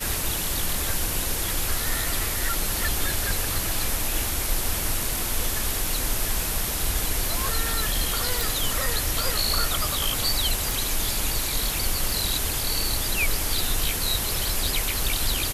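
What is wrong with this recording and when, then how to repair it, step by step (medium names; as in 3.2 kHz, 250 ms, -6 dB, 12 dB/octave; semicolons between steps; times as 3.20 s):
8.41 s: pop
10.71 s: pop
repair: de-click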